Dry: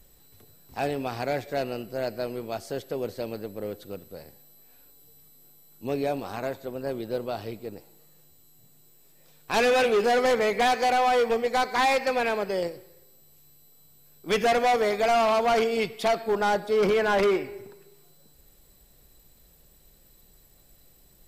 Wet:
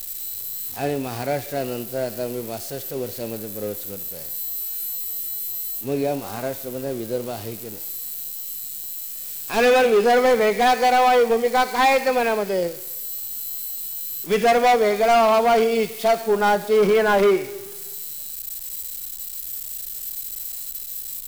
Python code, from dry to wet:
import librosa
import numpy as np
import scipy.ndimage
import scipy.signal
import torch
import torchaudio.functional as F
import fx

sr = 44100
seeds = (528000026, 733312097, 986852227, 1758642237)

y = x + 0.5 * 10.0 ** (-29.0 / 20.0) * np.diff(np.sign(x), prepend=np.sign(x[:1]))
y = fx.hpss(y, sr, part='percussive', gain_db=-10)
y = y * 10.0 ** (6.0 / 20.0)